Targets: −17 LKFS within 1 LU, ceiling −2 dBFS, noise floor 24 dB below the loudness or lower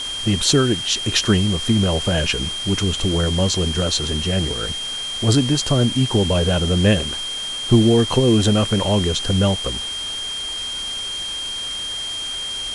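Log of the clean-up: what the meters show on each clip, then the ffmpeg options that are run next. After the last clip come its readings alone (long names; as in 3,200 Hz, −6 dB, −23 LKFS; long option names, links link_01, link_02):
interfering tone 3,200 Hz; level of the tone −25 dBFS; background noise floor −27 dBFS; target noise floor −43 dBFS; integrated loudness −19.0 LKFS; sample peak −1.5 dBFS; target loudness −17.0 LKFS
→ -af "bandreject=frequency=3200:width=30"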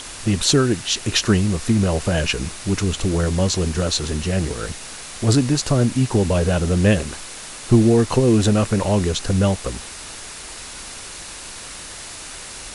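interfering tone none found; background noise floor −36 dBFS; target noise floor −44 dBFS
→ -af "afftdn=noise_reduction=8:noise_floor=-36"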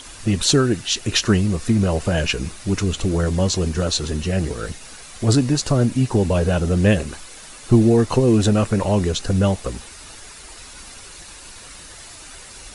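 background noise floor −40 dBFS; target noise floor −44 dBFS
→ -af "afftdn=noise_reduction=6:noise_floor=-40"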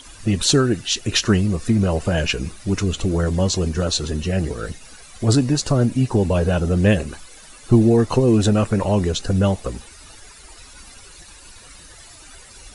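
background noise floor −44 dBFS; integrated loudness −19.5 LKFS; sample peak −1.5 dBFS; target loudness −17.0 LKFS
→ -af "volume=2.5dB,alimiter=limit=-2dB:level=0:latency=1"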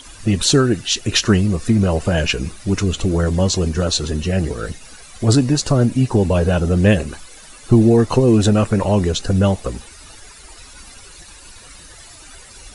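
integrated loudness −17.0 LKFS; sample peak −2.0 dBFS; background noise floor −41 dBFS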